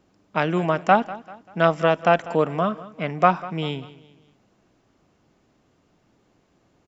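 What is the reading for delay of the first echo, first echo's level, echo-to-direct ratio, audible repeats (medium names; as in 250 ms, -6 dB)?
195 ms, -18.0 dB, -17.0 dB, 3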